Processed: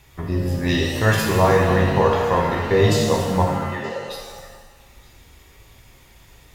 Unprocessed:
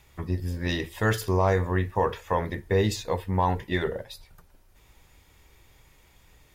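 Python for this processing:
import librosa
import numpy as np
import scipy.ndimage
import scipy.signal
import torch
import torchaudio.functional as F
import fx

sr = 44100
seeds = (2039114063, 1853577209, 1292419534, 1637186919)

p1 = fx.vowel_filter(x, sr, vowel='e', at=(3.42, 4.07))
p2 = p1 + fx.echo_stepped(p1, sr, ms=231, hz=280.0, octaves=1.4, feedback_pct=70, wet_db=-12.0, dry=0)
p3 = fx.rev_shimmer(p2, sr, seeds[0], rt60_s=1.3, semitones=7, shimmer_db=-8, drr_db=-1.5)
y = p3 * librosa.db_to_amplitude(4.0)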